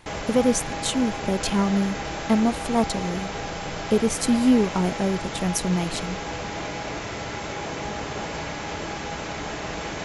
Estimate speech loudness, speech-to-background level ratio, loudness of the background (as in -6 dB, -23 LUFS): -24.0 LUFS, 7.0 dB, -31.0 LUFS